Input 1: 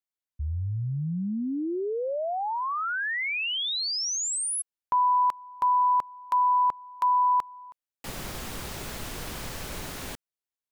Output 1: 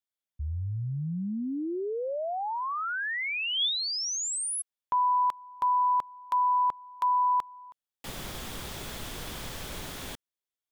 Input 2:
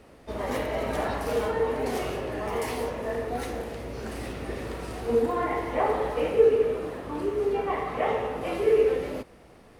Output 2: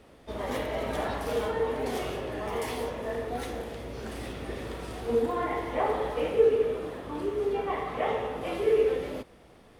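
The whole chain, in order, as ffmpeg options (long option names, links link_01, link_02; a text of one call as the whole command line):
ffmpeg -i in.wav -af "equalizer=frequency=3400:width_type=o:width=0.21:gain=6.5,volume=-2.5dB" out.wav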